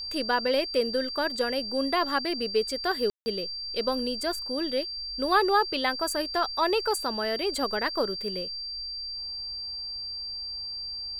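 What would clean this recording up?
notch filter 4,700 Hz, Q 30
ambience match 0:03.10–0:03.26

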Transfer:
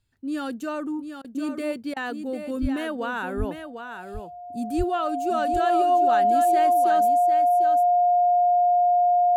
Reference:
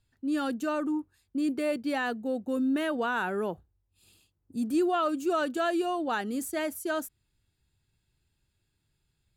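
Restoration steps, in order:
notch filter 710 Hz, Q 30
high-pass at the plosives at 0:02.61/0:03.38/0:04.77
repair the gap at 0:01.22/0:01.94, 23 ms
echo removal 749 ms −8 dB

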